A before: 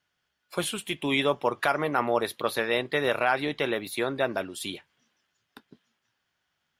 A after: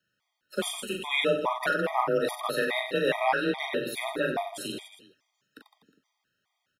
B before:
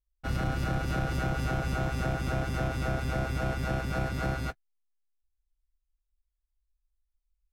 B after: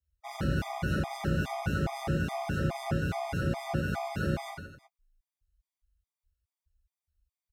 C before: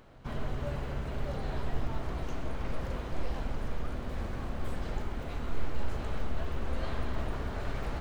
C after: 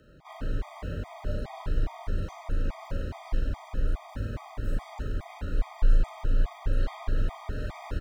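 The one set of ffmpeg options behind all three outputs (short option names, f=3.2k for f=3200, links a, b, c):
-af "aecho=1:1:40|92|159.6|247.5|361.7:0.631|0.398|0.251|0.158|0.1,afreqshift=27,afftfilt=real='re*gt(sin(2*PI*2.4*pts/sr)*(1-2*mod(floor(b*sr/1024/630),2)),0)':imag='im*gt(sin(2*PI*2.4*pts/sr)*(1-2*mod(floor(b*sr/1024/630),2)),0)':win_size=1024:overlap=0.75"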